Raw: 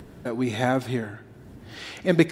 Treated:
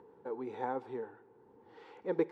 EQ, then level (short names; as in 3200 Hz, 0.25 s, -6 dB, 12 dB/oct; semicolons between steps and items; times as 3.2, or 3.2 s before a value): double band-pass 640 Hz, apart 0.89 oct; -1.5 dB